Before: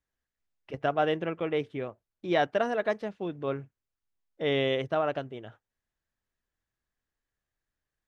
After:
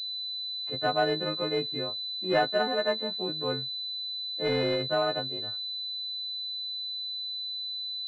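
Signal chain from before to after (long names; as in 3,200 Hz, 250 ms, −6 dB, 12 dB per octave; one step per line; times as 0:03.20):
every partial snapped to a pitch grid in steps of 3 semitones
switching amplifier with a slow clock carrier 4,000 Hz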